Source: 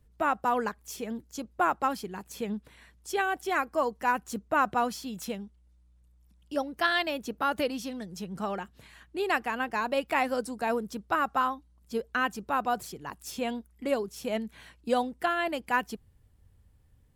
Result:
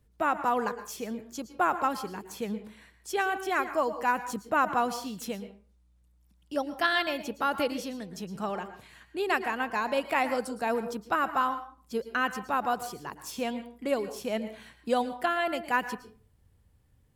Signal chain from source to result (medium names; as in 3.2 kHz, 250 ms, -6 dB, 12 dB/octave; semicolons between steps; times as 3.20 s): bass shelf 65 Hz -7 dB; on a send: reverberation RT60 0.40 s, pre-delay 107 ms, DRR 11 dB